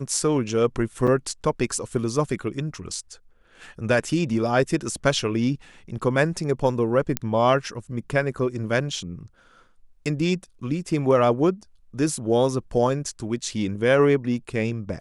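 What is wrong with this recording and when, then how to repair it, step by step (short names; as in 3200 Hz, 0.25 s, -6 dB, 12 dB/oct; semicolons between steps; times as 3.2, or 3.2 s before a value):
1.07–1.08 gap 6.2 ms
7.17 pop -6 dBFS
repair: de-click; interpolate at 1.07, 6.2 ms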